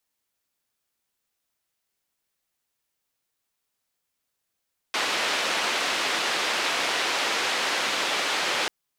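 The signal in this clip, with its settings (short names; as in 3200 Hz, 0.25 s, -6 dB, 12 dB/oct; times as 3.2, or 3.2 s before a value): noise band 360–3500 Hz, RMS -26 dBFS 3.74 s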